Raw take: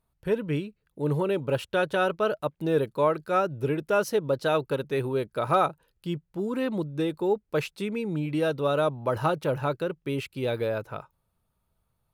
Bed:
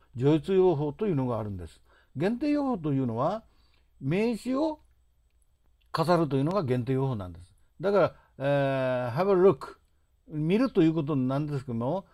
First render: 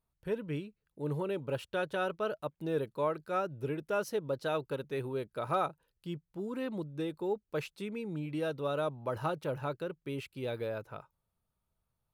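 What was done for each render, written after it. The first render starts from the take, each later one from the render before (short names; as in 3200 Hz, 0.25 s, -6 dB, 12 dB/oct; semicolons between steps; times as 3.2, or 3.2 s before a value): gain -8.5 dB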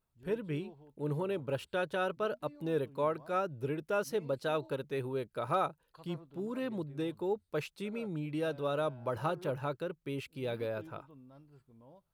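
add bed -28.5 dB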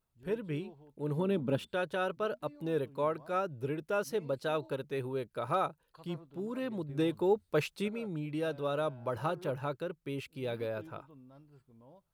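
1.17–1.71 small resonant body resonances 220/3500 Hz, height 13 dB -> 18 dB; 6.89–7.88 gain +5.5 dB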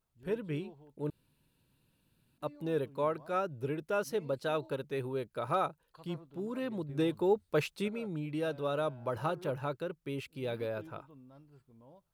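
1.1–2.38 room tone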